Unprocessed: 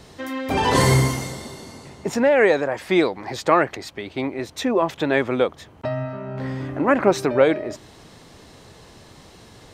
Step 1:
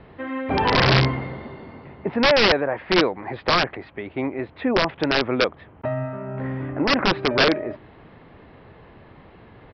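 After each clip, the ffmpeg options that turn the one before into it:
ffmpeg -i in.wav -af "lowpass=frequency=2500:width=0.5412,lowpass=frequency=2500:width=1.3066,aresample=11025,aeval=exprs='(mod(3.35*val(0)+1,2)-1)/3.35':channel_layout=same,aresample=44100" out.wav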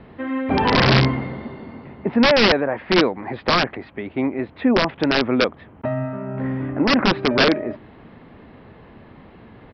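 ffmpeg -i in.wav -af "equalizer=frequency=230:width_type=o:width=0.62:gain=6.5,volume=1dB" out.wav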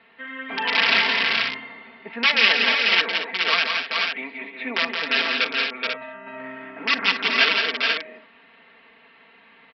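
ffmpeg -i in.wav -af "bandpass=frequency=2600:width_type=q:width=1.6:csg=0,aecho=1:1:4.4:0.84,aecho=1:1:41|170|195|228|426|488:0.106|0.562|0.119|0.266|0.596|0.473,volume=1.5dB" out.wav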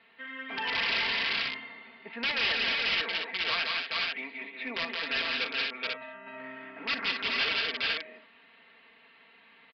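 ffmpeg -i in.wav -af "highshelf=frequency=3300:gain=9.5,aresample=11025,asoftclip=type=tanh:threshold=-16dB,aresample=44100,volume=-8dB" out.wav

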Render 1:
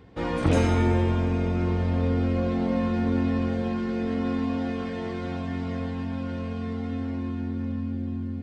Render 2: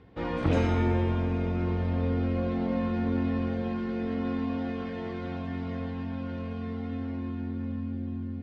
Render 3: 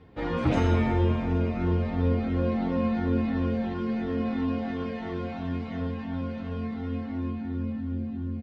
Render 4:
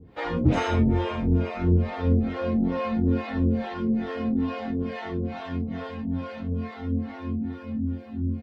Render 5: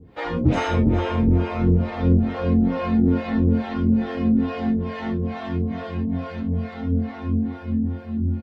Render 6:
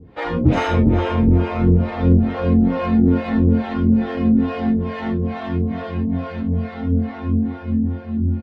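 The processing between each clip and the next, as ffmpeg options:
ffmpeg -i in.wav -af "lowpass=4300,volume=-3.5dB" out.wav
ffmpeg -i in.wav -filter_complex "[0:a]asplit=2[link_01][link_02];[link_02]adelay=8.7,afreqshift=-2.9[link_03];[link_01][link_03]amix=inputs=2:normalize=1,volume=5dB" out.wav
ffmpeg -i in.wav -filter_complex "[0:a]acrossover=split=460[link_01][link_02];[link_01]aeval=exprs='val(0)*(1-1/2+1/2*cos(2*PI*2.3*n/s))':channel_layout=same[link_03];[link_02]aeval=exprs='val(0)*(1-1/2-1/2*cos(2*PI*2.3*n/s))':channel_layout=same[link_04];[link_03][link_04]amix=inputs=2:normalize=0,volume=6.5dB" out.wav
ffmpeg -i in.wav -filter_complex "[0:a]asplit=2[link_01][link_02];[link_02]adelay=408,lowpass=frequency=1600:poles=1,volume=-4.5dB,asplit=2[link_03][link_04];[link_04]adelay=408,lowpass=frequency=1600:poles=1,volume=0.43,asplit=2[link_05][link_06];[link_06]adelay=408,lowpass=frequency=1600:poles=1,volume=0.43,asplit=2[link_07][link_08];[link_08]adelay=408,lowpass=frequency=1600:poles=1,volume=0.43,asplit=2[link_09][link_10];[link_10]adelay=408,lowpass=frequency=1600:poles=1,volume=0.43[link_11];[link_01][link_03][link_05][link_07][link_09][link_11]amix=inputs=6:normalize=0,volume=2dB" out.wav
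ffmpeg -i in.wav -af "adynamicsmooth=sensitivity=3:basefreq=5600,volume=3.5dB" out.wav

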